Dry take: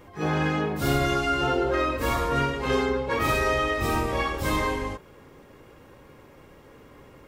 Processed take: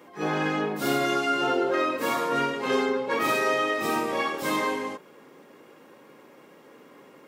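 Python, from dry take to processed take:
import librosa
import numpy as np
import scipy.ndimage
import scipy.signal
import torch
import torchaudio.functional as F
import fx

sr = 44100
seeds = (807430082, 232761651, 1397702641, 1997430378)

y = scipy.signal.sosfilt(scipy.signal.butter(4, 190.0, 'highpass', fs=sr, output='sos'), x)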